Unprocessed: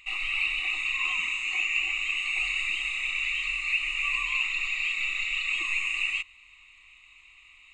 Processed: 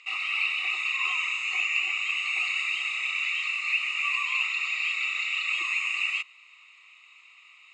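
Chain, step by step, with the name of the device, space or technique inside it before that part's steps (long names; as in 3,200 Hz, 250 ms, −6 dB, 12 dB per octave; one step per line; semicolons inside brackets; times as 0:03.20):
phone speaker on a table (loudspeaker in its box 370–7,900 Hz, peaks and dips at 470 Hz +9 dB, 1,300 Hz +8 dB, 5,100 Hz +8 dB)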